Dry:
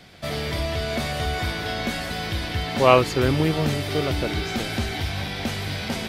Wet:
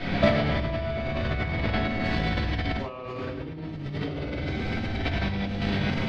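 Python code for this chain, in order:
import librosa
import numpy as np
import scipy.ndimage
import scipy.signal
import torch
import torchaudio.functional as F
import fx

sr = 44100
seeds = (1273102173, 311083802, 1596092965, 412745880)

y = fx.air_absorb(x, sr, metres=220.0)
y = fx.echo_feedback(y, sr, ms=106, feedback_pct=42, wet_db=-4.0)
y = fx.room_shoebox(y, sr, seeds[0], volume_m3=240.0, walls='mixed', distance_m=2.8)
y = fx.over_compress(y, sr, threshold_db=-28.0, ratio=-1.0)
y = fx.high_shelf(y, sr, hz=5700.0, db=fx.steps((0.0, -7.5), (2.04, 3.0)))
y = F.gain(torch.from_numpy(y), -1.0).numpy()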